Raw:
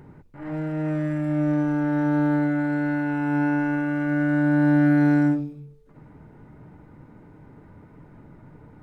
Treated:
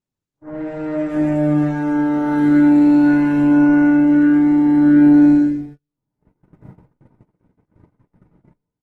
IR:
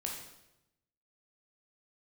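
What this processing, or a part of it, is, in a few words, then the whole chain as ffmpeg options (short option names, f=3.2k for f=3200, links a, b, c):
speakerphone in a meeting room: -filter_complex "[0:a]asettb=1/sr,asplit=3[a][b][c];[a]atrim=end=2.184[d];[b]atrim=start=2.18:end=3.27,asetpts=PTS-STARTPTS,afade=t=in:d=0.004:c=qsin,afade=t=out:st=1.086:d=0.004:c=qsin,highshelf=f=2.1k:g=6[e];[c]atrim=start=3.266[f];[d][e]acrossfade=d=0.004:c1=hsin:c2=qsin[g];[g][f]acrossfade=d=0.004:c1=qsin:c2=hsin,acrossover=split=1600[h][i];[i]adelay=130[j];[h][j]amix=inputs=2:normalize=0[k];[1:a]atrim=start_sample=2205[l];[k][l]afir=irnorm=-1:irlink=0,dynaudnorm=f=220:g=5:m=11dB,agate=range=-39dB:threshold=-31dB:ratio=16:detection=peak,volume=-3.5dB" -ar 48000 -c:a libopus -b:a 16k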